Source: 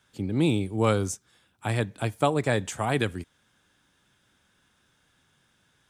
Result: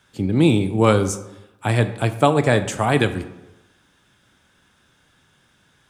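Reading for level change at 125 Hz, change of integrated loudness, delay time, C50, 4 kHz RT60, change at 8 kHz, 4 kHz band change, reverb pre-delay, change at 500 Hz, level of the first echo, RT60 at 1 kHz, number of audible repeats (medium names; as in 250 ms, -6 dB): +8.0 dB, +7.5 dB, no echo, 13.0 dB, 0.60 s, +5.5 dB, +7.0 dB, 18 ms, +8.0 dB, no echo, 1.0 s, no echo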